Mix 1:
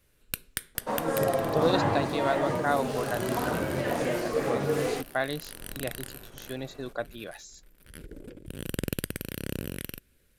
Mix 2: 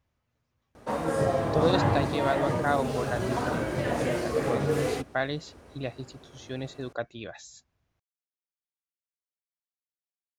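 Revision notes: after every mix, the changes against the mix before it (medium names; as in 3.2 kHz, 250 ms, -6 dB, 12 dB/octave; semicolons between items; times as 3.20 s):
first sound: muted; master: add peaking EQ 60 Hz +12 dB 1.6 oct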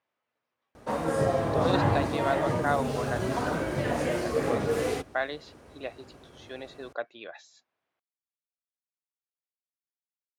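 speech: add band-pass 430–3700 Hz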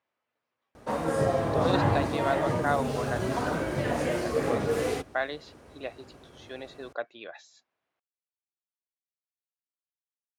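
no change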